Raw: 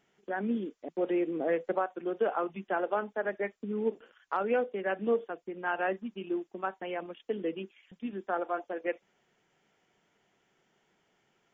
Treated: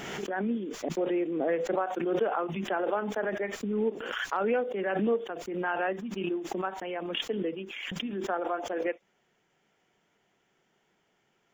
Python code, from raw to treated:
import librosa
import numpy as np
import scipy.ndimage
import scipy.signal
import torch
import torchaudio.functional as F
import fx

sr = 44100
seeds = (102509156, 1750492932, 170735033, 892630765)

y = fx.pre_swell(x, sr, db_per_s=28.0)